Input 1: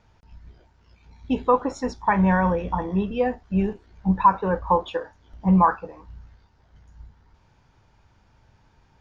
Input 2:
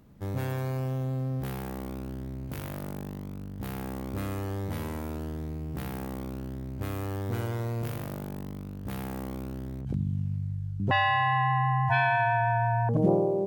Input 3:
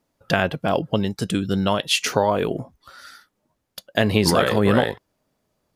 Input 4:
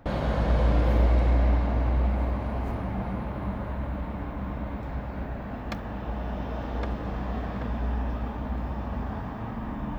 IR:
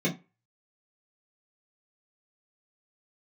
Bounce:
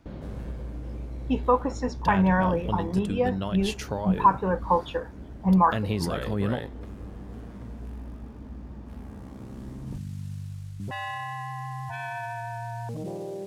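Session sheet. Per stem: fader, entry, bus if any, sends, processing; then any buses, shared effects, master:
-2.5 dB, 0.00 s, no send, dry
-4.5 dB, 0.00 s, no send, modulation noise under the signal 21 dB; LPF 10000 Hz 12 dB/oct; limiter -23 dBFS, peak gain reduction 10 dB; auto duck -13 dB, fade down 0.60 s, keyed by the first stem
-14.0 dB, 1.75 s, no send, low shelf 170 Hz +12 dB
-16.5 dB, 0.00 s, no send, resonant low shelf 510 Hz +7.5 dB, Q 1.5; compressor, threshold -16 dBFS, peak gain reduction 7 dB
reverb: off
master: dry

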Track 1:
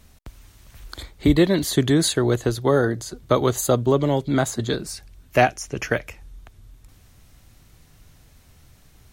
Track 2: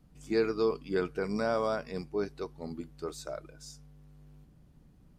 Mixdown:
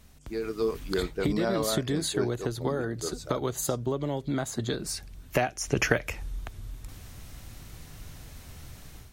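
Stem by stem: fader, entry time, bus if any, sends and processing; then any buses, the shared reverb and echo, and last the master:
-3.0 dB, 0.00 s, no send, compressor 8:1, threshold -27 dBFS, peak gain reduction 16 dB; auto duck -6 dB, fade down 0.70 s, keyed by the second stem
-7.5 dB, 0.00 s, no send, rotary speaker horn 8 Hz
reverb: off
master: AGC gain up to 10 dB

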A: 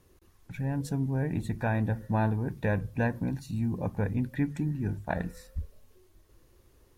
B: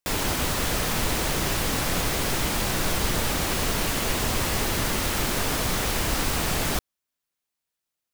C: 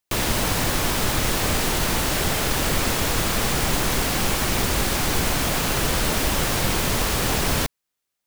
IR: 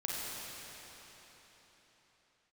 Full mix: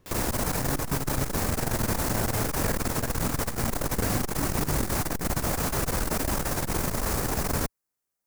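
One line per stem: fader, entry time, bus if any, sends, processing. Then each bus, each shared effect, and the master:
+2.0 dB, 0.00 s, no send, high shelf 6200 Hz -12 dB; compressor, threshold -28 dBFS, peak gain reduction 7 dB
-15.0 dB, 0.00 s, no send, high shelf 11000 Hz +5.5 dB
-2.0 dB, 0.00 s, no send, bell 3200 Hz -12 dB 1.1 oct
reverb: off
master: core saturation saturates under 170 Hz

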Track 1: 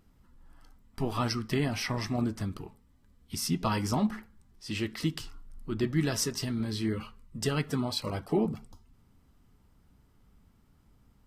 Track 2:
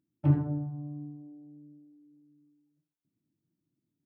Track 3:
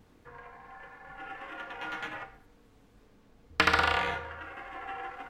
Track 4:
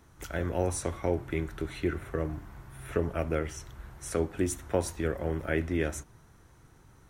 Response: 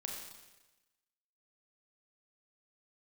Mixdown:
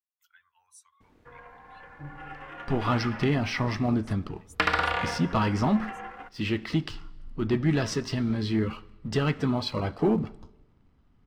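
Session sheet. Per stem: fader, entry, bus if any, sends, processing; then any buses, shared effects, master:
+0.5 dB, 1.70 s, send -16 dB, LPF 3500 Hz 12 dB/oct; sample leveller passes 1
-19.5 dB, 1.75 s, no send, dry
-0.5 dB, 1.00 s, send -16.5 dB, expander -58 dBFS; high shelf 4400 Hz -6.5 dB
-13.5 dB, 0.00 s, no send, per-bin expansion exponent 2; elliptic high-pass 1000 Hz, stop band 40 dB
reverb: on, RT60 1.1 s, pre-delay 29 ms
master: dry

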